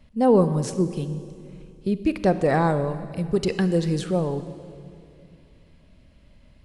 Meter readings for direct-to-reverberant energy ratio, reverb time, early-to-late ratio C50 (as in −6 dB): 11.5 dB, 2.5 s, 12.0 dB